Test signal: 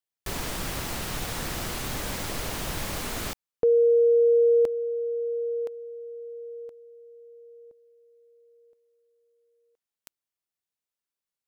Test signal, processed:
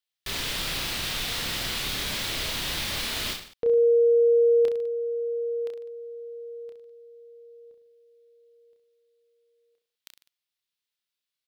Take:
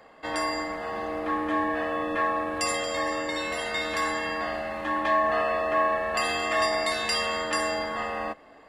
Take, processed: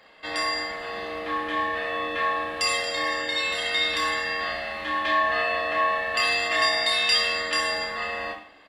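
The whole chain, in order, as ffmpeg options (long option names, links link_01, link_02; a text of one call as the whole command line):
ffmpeg -i in.wav -filter_complex "[0:a]firequalizer=gain_entry='entry(820,0);entry(2000,8);entry(3600,14);entry(6600,4)':delay=0.05:min_phase=1,asplit=2[link_01][link_02];[link_02]aecho=0:1:30|64.5|104.2|149.8|202.3:0.631|0.398|0.251|0.158|0.1[link_03];[link_01][link_03]amix=inputs=2:normalize=0,volume=-5.5dB" out.wav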